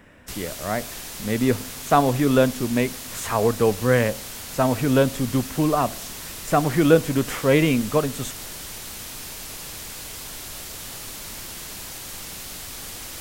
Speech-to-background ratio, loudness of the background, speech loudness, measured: 11.5 dB, -33.5 LUFS, -22.0 LUFS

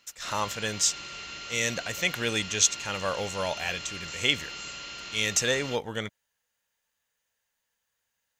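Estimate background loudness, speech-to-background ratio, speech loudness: -38.0 LUFS, 10.0 dB, -28.0 LUFS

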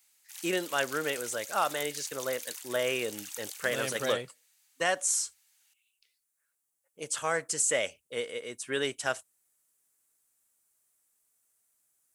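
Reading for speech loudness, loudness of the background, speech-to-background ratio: -31.5 LUFS, -41.0 LUFS, 9.5 dB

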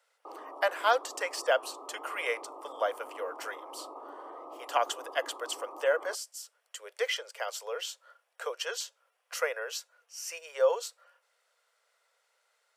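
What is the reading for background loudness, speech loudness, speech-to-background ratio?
-46.0 LUFS, -33.0 LUFS, 13.0 dB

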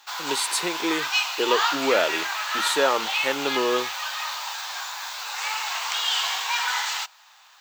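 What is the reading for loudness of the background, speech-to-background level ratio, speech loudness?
-26.0 LUFS, 0.0 dB, -26.0 LUFS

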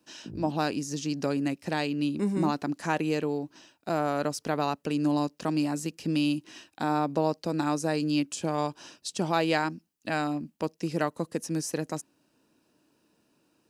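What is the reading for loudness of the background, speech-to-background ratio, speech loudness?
-45.0 LUFS, 15.5 dB, -29.5 LUFS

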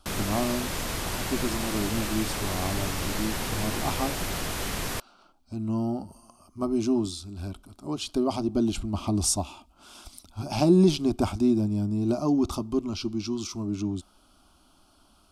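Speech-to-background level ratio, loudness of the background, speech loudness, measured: 3.0 dB, -31.0 LUFS, -28.0 LUFS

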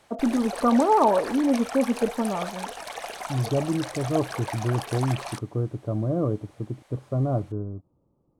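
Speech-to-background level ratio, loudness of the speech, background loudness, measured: 9.5 dB, -25.5 LUFS, -35.0 LUFS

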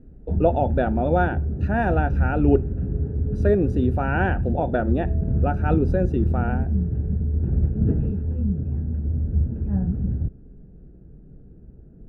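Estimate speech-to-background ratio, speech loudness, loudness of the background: 0.5 dB, -24.5 LUFS, -25.0 LUFS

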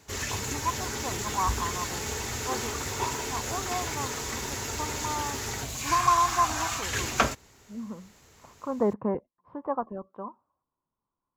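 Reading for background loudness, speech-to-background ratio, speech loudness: -31.0 LUFS, -1.0 dB, -32.0 LUFS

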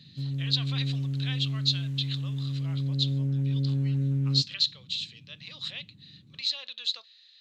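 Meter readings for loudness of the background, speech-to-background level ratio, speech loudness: -30.0 LUFS, -1.0 dB, -31.0 LUFS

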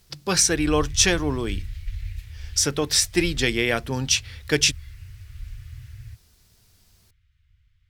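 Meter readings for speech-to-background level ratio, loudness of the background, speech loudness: 16.5 dB, -38.0 LUFS, -21.5 LUFS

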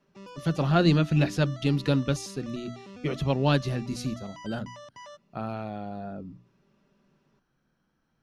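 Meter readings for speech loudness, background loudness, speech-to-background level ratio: -28.0 LUFS, -46.0 LUFS, 18.0 dB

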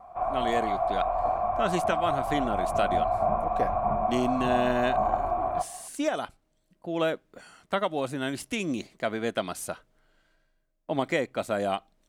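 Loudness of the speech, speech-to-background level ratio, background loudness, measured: -31.0 LUFS, -3.0 dB, -28.0 LUFS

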